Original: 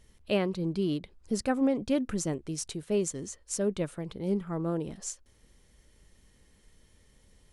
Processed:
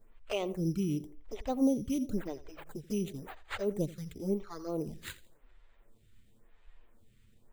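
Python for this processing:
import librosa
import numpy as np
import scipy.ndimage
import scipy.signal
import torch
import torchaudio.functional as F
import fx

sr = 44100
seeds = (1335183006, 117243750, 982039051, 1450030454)

y = fx.high_shelf(x, sr, hz=2800.0, db=-9.0, at=(0.83, 3.12))
y = np.repeat(y[::8], 8)[:len(y)]
y = fx.env_flanger(y, sr, rest_ms=9.8, full_db=-26.0)
y = fx.low_shelf(y, sr, hz=65.0, db=10.0)
y = fx.echo_feedback(y, sr, ms=84, feedback_pct=40, wet_db=-17.0)
y = fx.stagger_phaser(y, sr, hz=0.94)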